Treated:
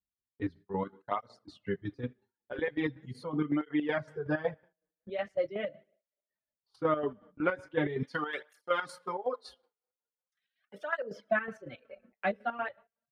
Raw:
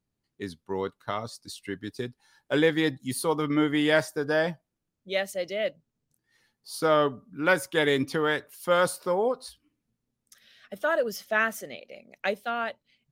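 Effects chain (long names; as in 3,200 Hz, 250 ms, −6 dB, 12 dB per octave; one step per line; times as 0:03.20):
low-shelf EQ 140 Hz +8 dB
double-tracking delay 20 ms −13 dB
coupled-rooms reverb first 0.59 s, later 2.4 s, DRR 8.5 dB
reverb reduction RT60 1.2 s
downward compressor 6 to 1, threshold −23 dBFS, peak gain reduction 8.5 dB
low-pass filter 1,900 Hz 12 dB per octave
square-wave tremolo 5.4 Hz, depth 65%, duty 50%
noise gate with hold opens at −45 dBFS
0:08.03–0:10.98: spectral tilt +4.5 dB per octave
through-zero flanger with one copy inverted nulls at 0.41 Hz, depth 7.8 ms
level +2.5 dB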